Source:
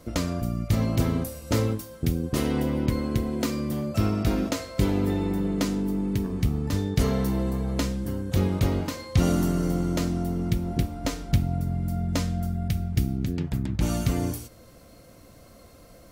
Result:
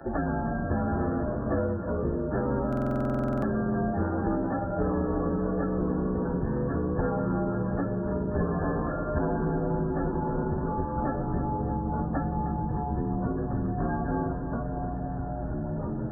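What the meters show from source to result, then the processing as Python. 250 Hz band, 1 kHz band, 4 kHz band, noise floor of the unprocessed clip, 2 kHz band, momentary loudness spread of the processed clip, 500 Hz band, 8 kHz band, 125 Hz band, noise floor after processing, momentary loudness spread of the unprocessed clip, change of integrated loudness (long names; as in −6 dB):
−2.0 dB, +5.5 dB, below −30 dB, −51 dBFS, −1.0 dB, 3 LU, +2.0 dB, below −35 dB, −4.5 dB, −32 dBFS, 5 LU, −2.5 dB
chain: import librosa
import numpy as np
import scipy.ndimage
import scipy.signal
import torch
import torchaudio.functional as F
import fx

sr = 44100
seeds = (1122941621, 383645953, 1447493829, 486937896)

p1 = fx.partial_stretch(x, sr, pct=120)
p2 = fx.level_steps(p1, sr, step_db=21)
p3 = p1 + F.gain(torch.from_numpy(p2), -2.0).numpy()
p4 = fx.brickwall_lowpass(p3, sr, high_hz=1800.0)
p5 = fx.echo_pitch(p4, sr, ms=82, semitones=-3, count=3, db_per_echo=-6.0)
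p6 = fx.low_shelf(p5, sr, hz=190.0, db=-11.0)
p7 = fx.hum_notches(p6, sr, base_hz=50, count=6)
p8 = p7 + fx.echo_feedback(p7, sr, ms=307, feedback_pct=54, wet_db=-14.0, dry=0)
p9 = fx.buffer_glitch(p8, sr, at_s=(2.68,), block=2048, repeats=15)
p10 = fx.band_squash(p9, sr, depth_pct=70)
y = F.gain(torch.from_numpy(p10), 3.0).numpy()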